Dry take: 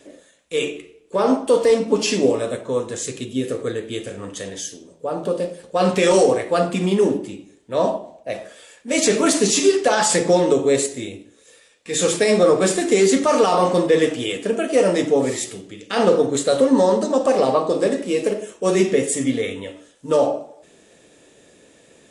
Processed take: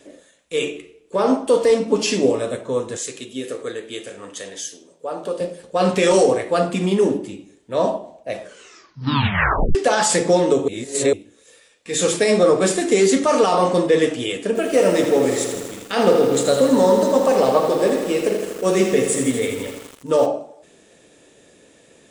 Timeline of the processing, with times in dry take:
0:02.97–0:05.41: high-pass filter 490 Hz 6 dB per octave
0:08.41: tape stop 1.34 s
0:10.68–0:11.13: reverse
0:14.47–0:20.26: feedback echo at a low word length 81 ms, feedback 80%, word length 6 bits, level −7.5 dB

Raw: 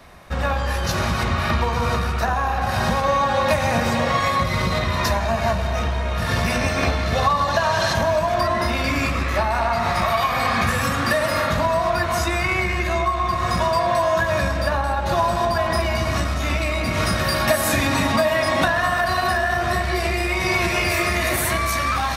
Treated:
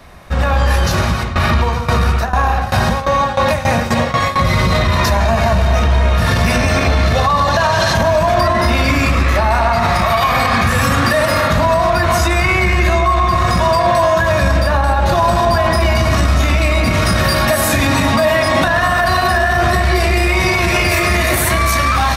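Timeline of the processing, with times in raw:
0:00.73–0:04.37: shaped tremolo saw down 1.4 Hz → 4.8 Hz, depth 90%
whole clip: low-shelf EQ 150 Hz +4.5 dB; automatic gain control; brickwall limiter −9 dBFS; level +4 dB

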